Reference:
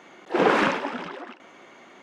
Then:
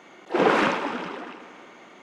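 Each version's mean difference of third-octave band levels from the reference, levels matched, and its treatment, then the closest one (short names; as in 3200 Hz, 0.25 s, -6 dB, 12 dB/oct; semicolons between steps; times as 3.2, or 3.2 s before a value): 1.5 dB: notch 1700 Hz, Q 25; multi-head echo 79 ms, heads first and third, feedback 64%, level -17 dB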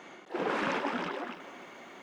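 7.0 dB: reverse; compressor 6:1, threshold -29 dBFS, peak gain reduction 14 dB; reverse; lo-fi delay 0.307 s, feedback 35%, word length 10-bit, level -14 dB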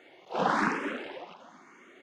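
4.0 dB: feedback echo 0.25 s, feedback 24%, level -10.5 dB; endless phaser +1 Hz; gain -3.5 dB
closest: first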